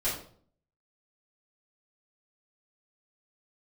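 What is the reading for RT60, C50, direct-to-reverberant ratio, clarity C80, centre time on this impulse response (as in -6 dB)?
0.55 s, 4.5 dB, -12.5 dB, 9.0 dB, 38 ms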